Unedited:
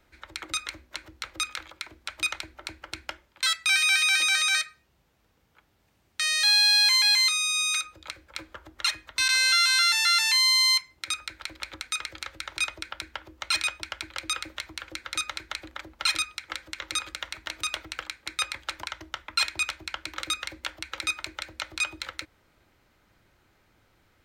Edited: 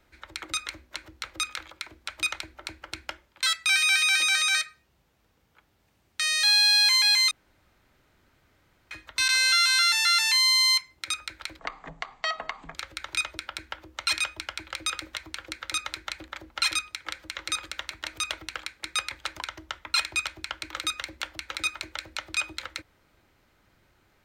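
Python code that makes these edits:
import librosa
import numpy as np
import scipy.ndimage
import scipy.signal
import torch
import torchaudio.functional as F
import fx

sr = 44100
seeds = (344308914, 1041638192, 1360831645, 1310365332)

y = fx.edit(x, sr, fx.room_tone_fill(start_s=7.31, length_s=1.6),
    fx.speed_span(start_s=11.59, length_s=0.59, speed=0.51), tone=tone)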